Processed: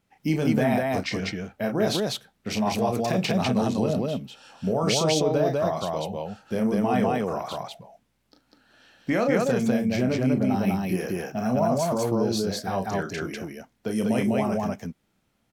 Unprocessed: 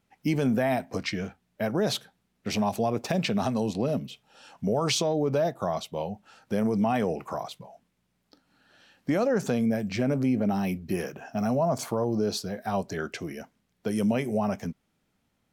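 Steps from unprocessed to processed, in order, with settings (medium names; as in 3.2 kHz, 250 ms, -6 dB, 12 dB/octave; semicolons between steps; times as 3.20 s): 7.37–9.25 s: dynamic bell 2 kHz, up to +7 dB, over -49 dBFS, Q 1.1; loudspeakers at several distances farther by 11 m -6 dB, 68 m -1 dB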